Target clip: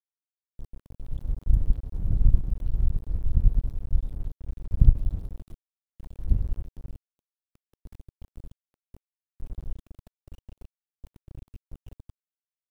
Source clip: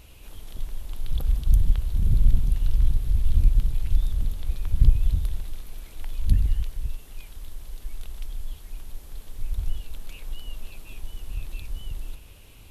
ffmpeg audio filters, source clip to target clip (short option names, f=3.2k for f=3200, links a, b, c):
-af "aeval=exprs='val(0)*gte(abs(val(0)),0.0562)':c=same,aeval=exprs='0.668*(cos(1*acos(clip(val(0)/0.668,-1,1)))-cos(1*PI/2))+0.119*(cos(3*acos(clip(val(0)/0.668,-1,1)))-cos(3*PI/2))+0.0237*(cos(7*acos(clip(val(0)/0.668,-1,1)))-cos(7*PI/2))+0.00531*(cos(8*acos(clip(val(0)/0.668,-1,1)))-cos(8*PI/2))':c=same,tiltshelf=f=1.1k:g=9,volume=-7.5dB"